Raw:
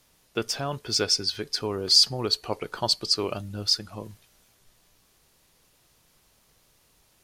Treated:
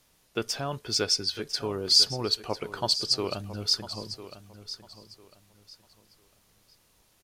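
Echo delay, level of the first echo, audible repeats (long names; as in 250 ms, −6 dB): 1,001 ms, −13.5 dB, 2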